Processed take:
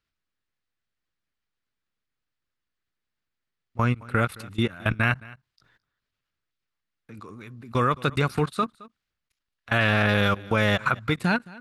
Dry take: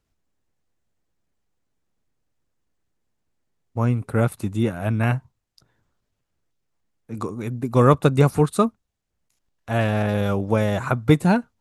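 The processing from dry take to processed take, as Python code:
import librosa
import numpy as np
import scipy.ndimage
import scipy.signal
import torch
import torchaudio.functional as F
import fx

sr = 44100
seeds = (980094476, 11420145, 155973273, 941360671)

y = fx.band_shelf(x, sr, hz=2400.0, db=11.0, octaves=2.4)
y = fx.level_steps(y, sr, step_db=21)
y = y + 10.0 ** (-21.5 / 20.0) * np.pad(y, (int(217 * sr / 1000.0), 0))[:len(y)]
y = fx.end_taper(y, sr, db_per_s=540.0)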